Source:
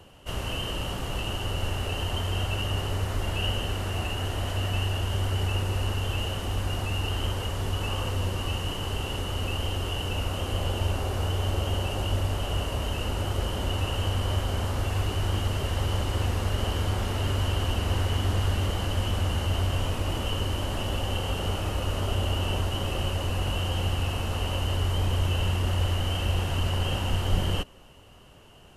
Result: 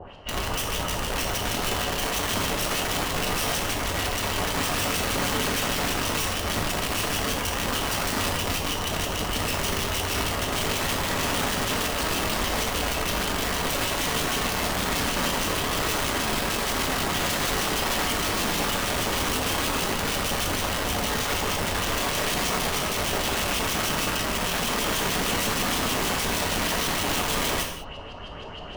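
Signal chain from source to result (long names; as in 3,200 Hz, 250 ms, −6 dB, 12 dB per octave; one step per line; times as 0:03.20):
reversed playback
upward compression, threshold −31 dBFS
reversed playback
auto-filter low-pass saw up 6.4 Hz 600–5,500 Hz
wrap-around overflow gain 23.5 dB
reverb whose tail is shaped and stops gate 230 ms falling, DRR 0.5 dB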